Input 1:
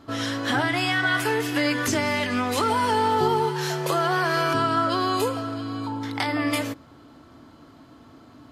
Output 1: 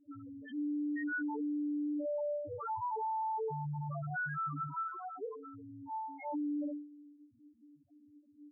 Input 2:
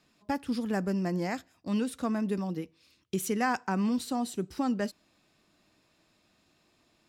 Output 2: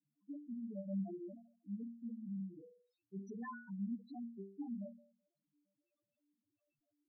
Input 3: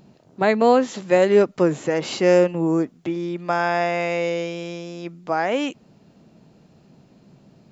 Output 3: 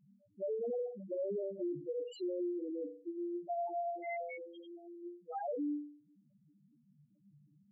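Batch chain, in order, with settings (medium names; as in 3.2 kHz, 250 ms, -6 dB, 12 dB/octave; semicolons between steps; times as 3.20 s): chord resonator G2 minor, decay 0.53 s; loudest bins only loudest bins 2; peak limiter -37.5 dBFS; trim +5.5 dB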